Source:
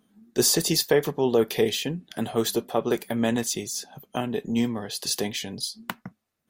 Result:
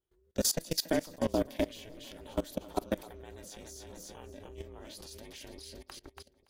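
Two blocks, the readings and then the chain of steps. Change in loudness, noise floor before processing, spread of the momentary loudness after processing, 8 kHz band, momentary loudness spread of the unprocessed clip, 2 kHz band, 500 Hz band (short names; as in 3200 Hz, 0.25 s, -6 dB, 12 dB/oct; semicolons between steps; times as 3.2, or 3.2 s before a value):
-9.0 dB, -75 dBFS, 18 LU, -10.5 dB, 11 LU, -12.5 dB, -11.5 dB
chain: split-band echo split 370 Hz, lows 0.526 s, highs 0.284 s, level -10.5 dB; level quantiser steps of 21 dB; ring modulator 160 Hz; gain -3 dB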